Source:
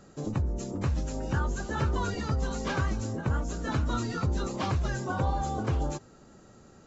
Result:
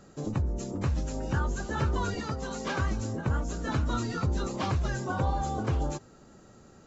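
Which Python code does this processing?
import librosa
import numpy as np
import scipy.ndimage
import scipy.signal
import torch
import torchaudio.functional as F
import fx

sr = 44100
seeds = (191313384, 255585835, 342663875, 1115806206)

y = fx.highpass(x, sr, hz=190.0, slope=6, at=(2.2, 2.8))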